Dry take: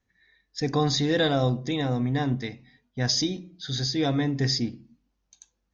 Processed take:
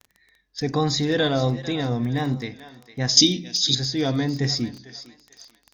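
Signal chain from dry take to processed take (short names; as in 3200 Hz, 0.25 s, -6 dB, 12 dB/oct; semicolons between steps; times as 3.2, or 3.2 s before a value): thinning echo 0.449 s, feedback 37%, high-pass 630 Hz, level -13.5 dB; vibrato 1.4 Hz 57 cents; crackle 14/s -34 dBFS; 3.17–3.75 EQ curve 130 Hz 0 dB, 240 Hz +9 dB, 1400 Hz -12 dB, 2600 Hz +13 dB; gain +1.5 dB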